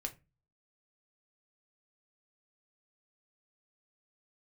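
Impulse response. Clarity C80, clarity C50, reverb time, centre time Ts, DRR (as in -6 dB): 25.0 dB, 17.5 dB, 0.25 s, 7 ms, 3.5 dB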